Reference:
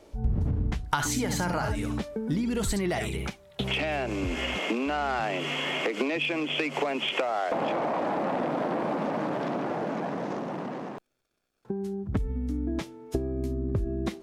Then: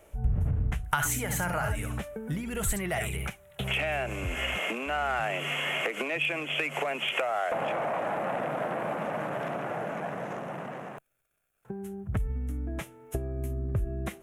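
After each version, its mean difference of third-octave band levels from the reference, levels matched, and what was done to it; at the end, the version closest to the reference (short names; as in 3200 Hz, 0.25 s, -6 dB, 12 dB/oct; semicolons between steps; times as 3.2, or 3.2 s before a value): 4.0 dB: EQ curve 140 Hz 0 dB, 280 Hz -11 dB, 660 Hz 0 dB, 950 Hz -4 dB, 1400 Hz +2 dB, 2800 Hz +1 dB, 4600 Hz -14 dB, 6600 Hz -1 dB, 11000 Hz +9 dB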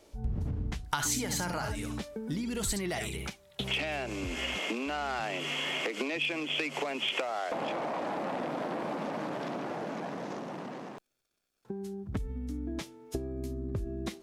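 2.5 dB: high shelf 2600 Hz +8.5 dB; gain -6.5 dB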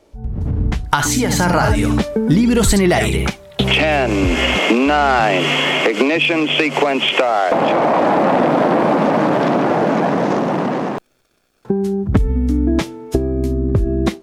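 1.5 dB: AGC gain up to 16.5 dB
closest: third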